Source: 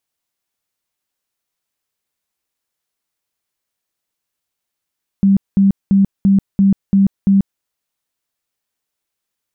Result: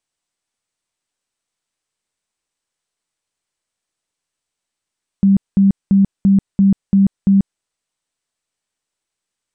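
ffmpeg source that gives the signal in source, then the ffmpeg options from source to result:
-f lavfi -i "aevalsrc='0.422*sin(2*PI*196*mod(t,0.34))*lt(mod(t,0.34),27/196)':duration=2.38:sample_rate=44100"
-ar 32000 -c:a mp2 -b:a 192k

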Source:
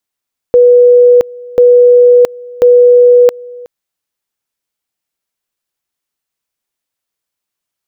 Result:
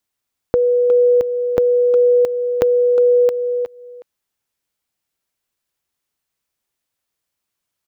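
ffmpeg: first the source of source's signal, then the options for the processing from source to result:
-f lavfi -i "aevalsrc='pow(10,(-1.5-23.5*gte(mod(t,1.04),0.67))/20)*sin(2*PI*489*t)':duration=3.12:sample_rate=44100"
-filter_complex "[0:a]equalizer=frequency=75:width_type=o:width=2.4:gain=5,acompressor=threshold=-15dB:ratio=5,asplit=2[link_01][link_02];[link_02]adelay=360,highpass=300,lowpass=3400,asoftclip=type=hard:threshold=-10dB,volume=-8dB[link_03];[link_01][link_03]amix=inputs=2:normalize=0"

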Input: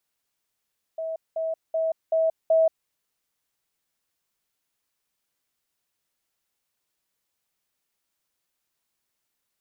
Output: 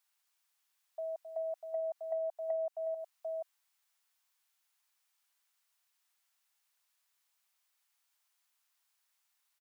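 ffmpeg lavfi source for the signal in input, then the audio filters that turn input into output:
-f lavfi -i "aevalsrc='pow(10,(-27.5+3*floor(t/0.38))/20)*sin(2*PI*647*t)*clip(min(mod(t,0.38),0.18-mod(t,0.38))/0.005,0,1)':duration=1.9:sample_rate=44100"
-af "aecho=1:1:266|745:0.355|0.266,acompressor=threshold=-27dB:ratio=5,highpass=frequency=770:width=0.5412,highpass=frequency=770:width=1.3066"

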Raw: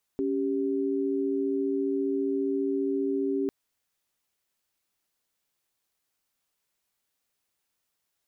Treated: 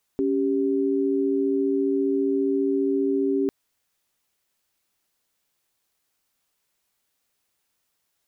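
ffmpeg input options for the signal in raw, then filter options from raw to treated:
-f lavfi -i "aevalsrc='0.0422*(sin(2*PI*277.18*t)+sin(2*PI*392*t))':duration=3.3:sample_rate=44100"
-af "acontrast=23"

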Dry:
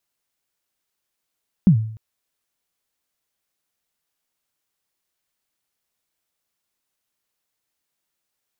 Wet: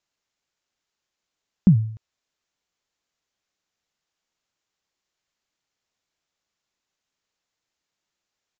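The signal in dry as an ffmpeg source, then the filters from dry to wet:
-f lavfi -i "aevalsrc='0.501*pow(10,-3*t/0.59)*sin(2*PI*(210*0.091/log(110/210)*(exp(log(110/210)*min(t,0.091)/0.091)-1)+110*max(t-0.091,0)))':duration=0.3:sample_rate=44100"
-af "aresample=16000,aresample=44100"

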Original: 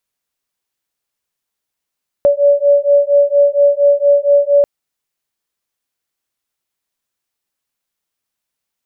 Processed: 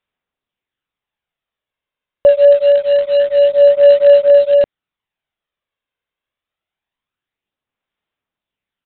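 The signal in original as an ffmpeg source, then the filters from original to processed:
-f lavfi -i "aevalsrc='0.282*(sin(2*PI*569*t)+sin(2*PI*573.3*t))':duration=2.39:sample_rate=44100"
-af "aresample=8000,acrusher=bits=5:mode=log:mix=0:aa=0.000001,aresample=44100,aphaser=in_gain=1:out_gain=1:delay=1.9:decay=0.33:speed=0.25:type=sinusoidal"

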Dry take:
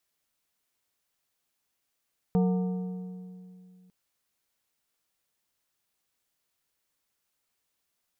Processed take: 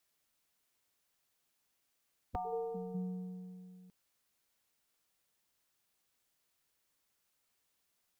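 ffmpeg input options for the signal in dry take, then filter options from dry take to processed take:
-f lavfi -i "aevalsrc='0.1*pow(10,-3*t/2.62)*sin(2*PI*183*t)+0.0422*pow(10,-3*t/1.99)*sin(2*PI*457.5*t)+0.0178*pow(10,-3*t/1.729)*sin(2*PI*732*t)+0.0075*pow(10,-3*t/1.617)*sin(2*PI*915*t)+0.00316*pow(10,-3*t/1.494)*sin(2*PI*1189.5*t)':duration=1.55:sample_rate=44100"
-af "afftfilt=real='re*lt(hypot(re,im),0.2)':imag='im*lt(hypot(re,im),0.2)':win_size=1024:overlap=0.75"

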